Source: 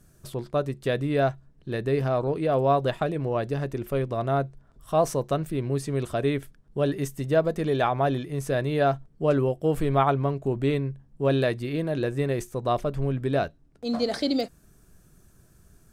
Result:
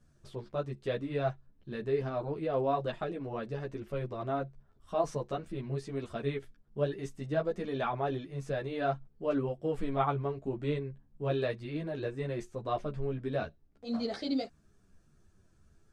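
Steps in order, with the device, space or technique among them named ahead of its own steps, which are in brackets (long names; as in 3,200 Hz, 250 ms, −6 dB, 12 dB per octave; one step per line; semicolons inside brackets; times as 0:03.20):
string-machine ensemble chorus (string-ensemble chorus; low-pass filter 5,900 Hz 12 dB per octave)
level −5.5 dB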